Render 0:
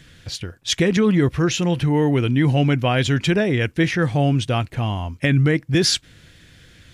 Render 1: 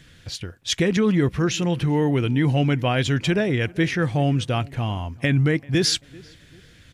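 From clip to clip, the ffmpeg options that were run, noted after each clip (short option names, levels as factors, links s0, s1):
-filter_complex "[0:a]asplit=2[s0][s1];[s1]adelay=389,lowpass=f=2200:p=1,volume=0.0708,asplit=2[s2][s3];[s3]adelay=389,lowpass=f=2200:p=1,volume=0.38,asplit=2[s4][s5];[s5]adelay=389,lowpass=f=2200:p=1,volume=0.38[s6];[s0][s2][s4][s6]amix=inputs=4:normalize=0,volume=0.75"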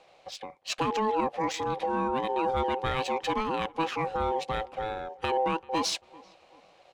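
-af "aeval=exprs='0.316*(cos(1*acos(clip(val(0)/0.316,-1,1)))-cos(1*PI/2))+0.0355*(cos(2*acos(clip(val(0)/0.316,-1,1)))-cos(2*PI/2))':c=same,aeval=exprs='val(0)*sin(2*PI*650*n/s)':c=same,adynamicsmooth=sensitivity=4.5:basefreq=6600,volume=0.562"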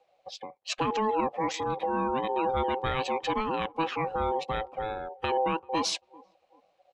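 -af "afftdn=nr=15:nf=-46"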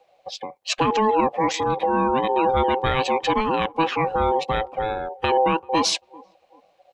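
-af "bandreject=f=1300:w=18,volume=2.51"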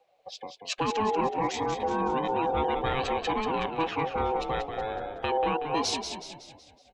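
-filter_complex "[0:a]asplit=7[s0][s1][s2][s3][s4][s5][s6];[s1]adelay=186,afreqshift=-43,volume=0.447[s7];[s2]adelay=372,afreqshift=-86,volume=0.214[s8];[s3]adelay=558,afreqshift=-129,volume=0.102[s9];[s4]adelay=744,afreqshift=-172,volume=0.0495[s10];[s5]adelay=930,afreqshift=-215,volume=0.0237[s11];[s6]adelay=1116,afreqshift=-258,volume=0.0114[s12];[s0][s7][s8][s9][s10][s11][s12]amix=inputs=7:normalize=0,volume=0.398"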